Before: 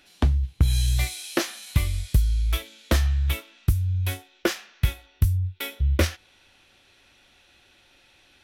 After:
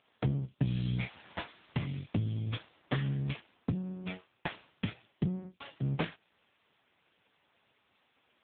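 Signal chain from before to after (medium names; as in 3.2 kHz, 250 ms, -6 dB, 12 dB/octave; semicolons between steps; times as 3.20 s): 1.42–2.15 s: self-modulated delay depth 0.87 ms; full-wave rectifier; trim -3 dB; AMR-NB 6.7 kbps 8 kHz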